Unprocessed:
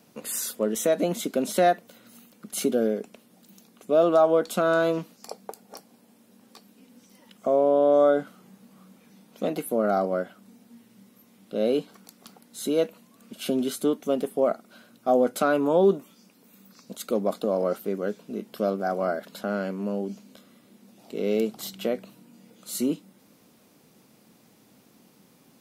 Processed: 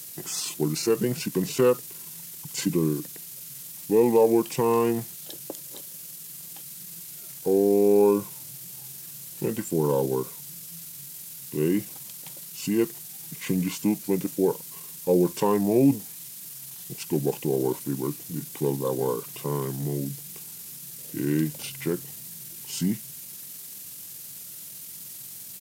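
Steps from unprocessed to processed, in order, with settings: added noise violet -40 dBFS; pitch shift -6 st

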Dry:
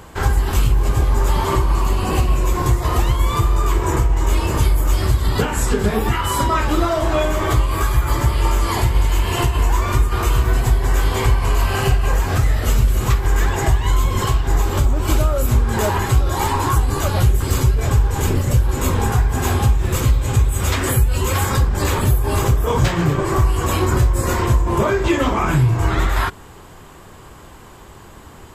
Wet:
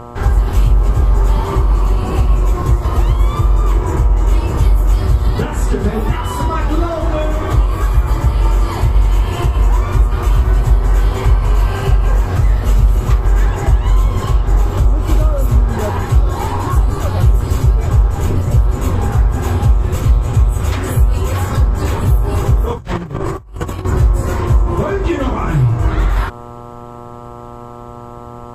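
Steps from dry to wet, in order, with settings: buzz 120 Hz, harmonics 11, -32 dBFS 0 dB/oct; tilt -1.5 dB/oct; 22.73–23.85 negative-ratio compressor -19 dBFS, ratio -0.5; gain -2 dB

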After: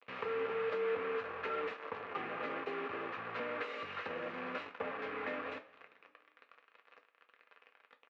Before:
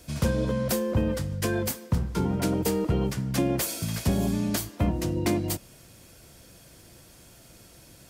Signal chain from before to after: compressor 10:1, threshold -34 dBFS, peak gain reduction 15 dB; pitch shift -2.5 st; bit-crush 7-bit; soft clip -29.5 dBFS, distortion -19 dB; speaker cabinet 470–2700 Hz, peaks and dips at 470 Hz +9 dB, 1200 Hz +10 dB, 1700 Hz +5 dB, 2500 Hz +6 dB; two-slope reverb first 0.23 s, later 2.1 s, from -21 dB, DRR 4 dB

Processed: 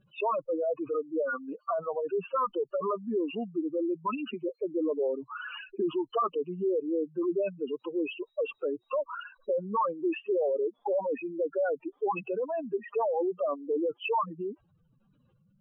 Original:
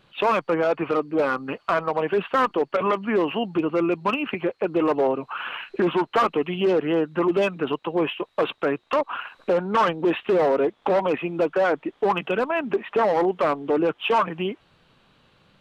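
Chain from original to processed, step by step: spectral contrast raised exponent 3.6; dynamic EQ 150 Hz, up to -5 dB, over -49 dBFS, Q 3.5; steep low-pass 4300 Hz; gain -7 dB

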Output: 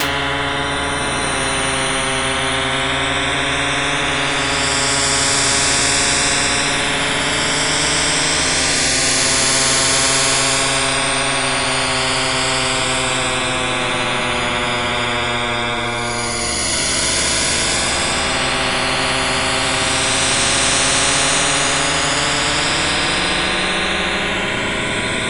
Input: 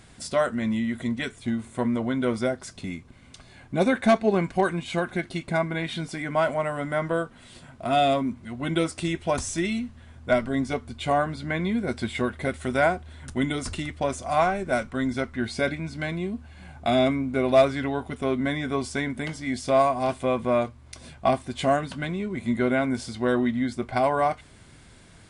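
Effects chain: moving spectral ripple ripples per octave 1.7, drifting +2.3 Hz, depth 15 dB; in parallel at +1.5 dB: compressor, threshold -34 dBFS, peak gain reduction 23.5 dB; on the sum: Paulstretch 5.6×, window 0.50 s, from 17.89; shoebox room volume 120 m³, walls furnished, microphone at 2.6 m; spectral compressor 10:1; gain -5.5 dB

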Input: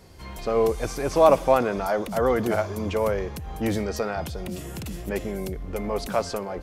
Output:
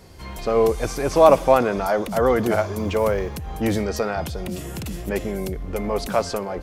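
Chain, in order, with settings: 2.77–3.36 companded quantiser 8-bit; gain +3.5 dB

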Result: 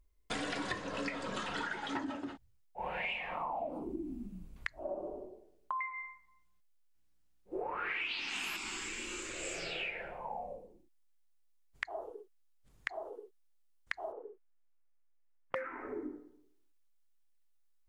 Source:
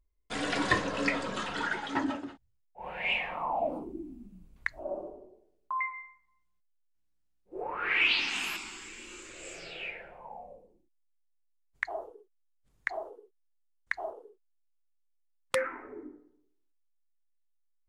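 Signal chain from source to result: 14.12–15.56 LPF 2300 Hz 24 dB/oct; compressor 10:1, threshold -40 dBFS, peak gain reduction 20 dB; gain +5 dB

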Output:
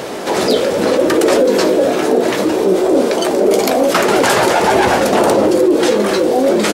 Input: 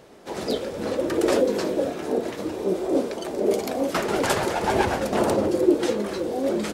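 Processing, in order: HPF 250 Hz 6 dB/oct; in parallel at -5 dB: soft clip -20.5 dBFS, distortion -12 dB; on the sum: doubler 16 ms -11 dB; maximiser +11 dB; fast leveller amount 50%; gain -4 dB

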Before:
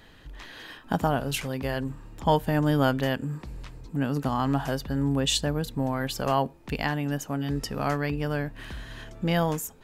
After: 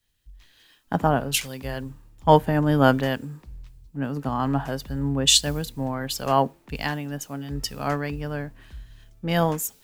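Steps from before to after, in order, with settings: requantised 10-bit, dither triangular; three-band expander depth 100%; gain +1 dB

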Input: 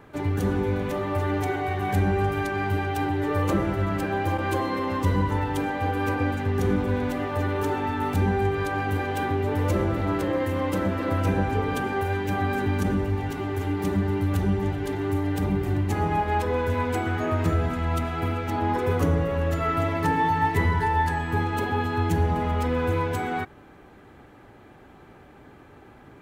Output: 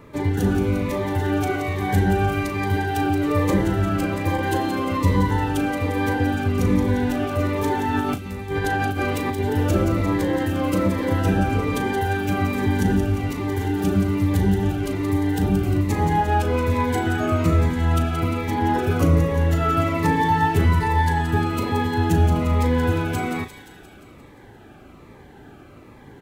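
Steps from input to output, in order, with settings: 7.94–9.4 negative-ratio compressor -27 dBFS, ratio -0.5; doubler 37 ms -11 dB; thin delay 0.175 s, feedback 62%, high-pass 2700 Hz, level -7 dB; cascading phaser falling 1.2 Hz; gain +5 dB

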